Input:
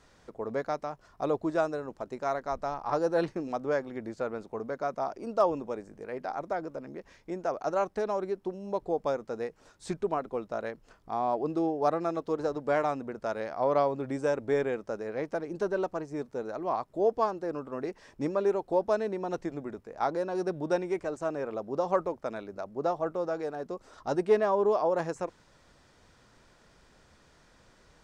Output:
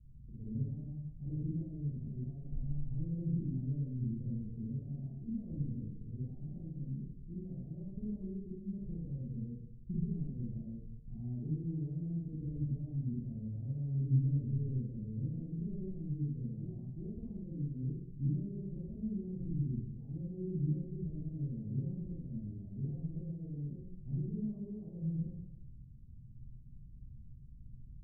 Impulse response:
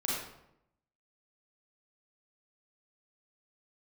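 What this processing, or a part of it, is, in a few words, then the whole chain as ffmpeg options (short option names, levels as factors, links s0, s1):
club heard from the street: -filter_complex "[0:a]alimiter=limit=0.0668:level=0:latency=1:release=51,lowpass=f=140:w=0.5412,lowpass=f=140:w=1.3066[s0];[1:a]atrim=start_sample=2205[s1];[s0][s1]afir=irnorm=-1:irlink=0,volume=2.99"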